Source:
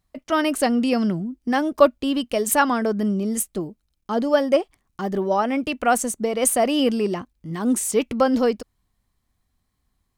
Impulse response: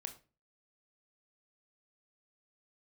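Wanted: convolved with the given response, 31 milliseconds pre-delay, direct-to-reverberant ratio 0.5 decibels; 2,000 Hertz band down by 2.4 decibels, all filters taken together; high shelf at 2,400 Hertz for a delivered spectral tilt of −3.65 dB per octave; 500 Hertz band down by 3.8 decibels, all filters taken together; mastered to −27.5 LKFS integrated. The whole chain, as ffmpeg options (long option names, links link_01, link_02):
-filter_complex "[0:a]equalizer=frequency=500:width_type=o:gain=-4.5,equalizer=frequency=2000:width_type=o:gain=-5.5,highshelf=frequency=2400:gain=5,asplit=2[link_01][link_02];[1:a]atrim=start_sample=2205,adelay=31[link_03];[link_02][link_03]afir=irnorm=-1:irlink=0,volume=3dB[link_04];[link_01][link_04]amix=inputs=2:normalize=0,volume=-8dB"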